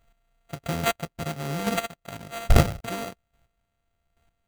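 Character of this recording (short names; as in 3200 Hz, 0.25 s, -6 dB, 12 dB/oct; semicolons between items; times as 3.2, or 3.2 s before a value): a buzz of ramps at a fixed pitch in blocks of 64 samples; chopped level 1.2 Hz, depth 65%, duty 15%; aliases and images of a low sample rate 5300 Hz, jitter 0%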